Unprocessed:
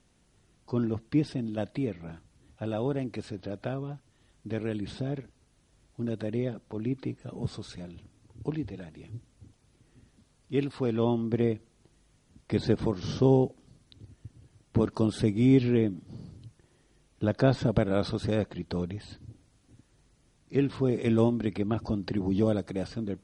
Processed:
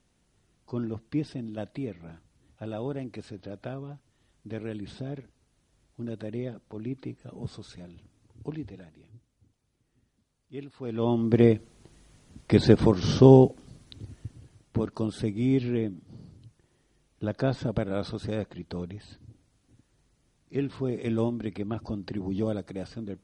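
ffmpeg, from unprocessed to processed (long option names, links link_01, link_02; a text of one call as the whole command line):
ffmpeg -i in.wav -af "volume=15.5dB,afade=type=out:start_time=8.67:duration=0.45:silence=0.398107,afade=type=in:start_time=10.79:duration=0.22:silence=0.316228,afade=type=in:start_time=11.01:duration=0.43:silence=0.354813,afade=type=out:start_time=14.15:duration=0.66:silence=0.281838" out.wav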